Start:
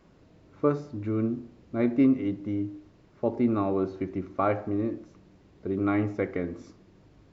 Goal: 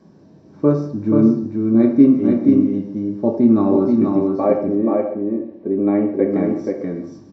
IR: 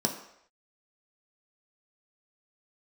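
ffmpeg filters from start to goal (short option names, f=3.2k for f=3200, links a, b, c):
-filter_complex "[0:a]asettb=1/sr,asplit=3[a][b][c];[a]atrim=end=4.274[d];[b]atrim=start=4.27:end=6.31,asetpts=PTS-STARTPTS,afade=t=in:d=0.004:c=qsin,afade=t=out:st=2.036:d=0.004:c=qsin,highpass=100,equalizer=f=110:t=q:w=4:g=-9,equalizer=f=170:t=q:w=4:g=-10,equalizer=f=520:t=q:w=4:g=5,equalizer=f=1k:t=q:w=4:g=-4,equalizer=f=1.4k:t=q:w=4:g=-9,lowpass=f=2.9k:w=0.5412,lowpass=f=2.9k:w=1.3066[e];[c]atrim=start=6.306[f];[d][e]acrossfade=d=0.004:c1=hsin:c2=qsin[g];[g][f]acrossfade=d=0.004:c1=qsin:c2=hsin,aecho=1:1:150|480|610:0.158|0.668|0.168[h];[1:a]atrim=start_sample=2205,afade=t=out:st=0.17:d=0.01,atrim=end_sample=7938[i];[h][i]afir=irnorm=-1:irlink=0,volume=-4dB"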